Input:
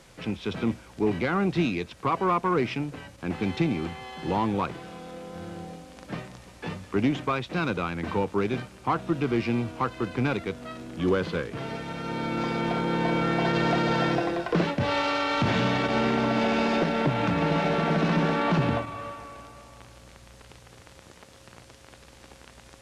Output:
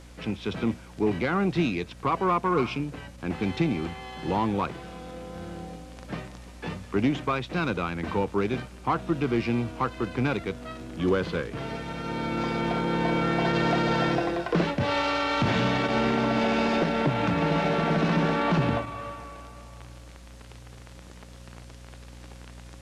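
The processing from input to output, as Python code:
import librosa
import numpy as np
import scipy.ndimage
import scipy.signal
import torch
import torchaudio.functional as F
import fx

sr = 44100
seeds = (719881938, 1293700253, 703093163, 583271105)

y = fx.spec_repair(x, sr, seeds[0], start_s=2.58, length_s=0.26, low_hz=570.0, high_hz=2100.0, source='both')
y = fx.add_hum(y, sr, base_hz=60, snr_db=20)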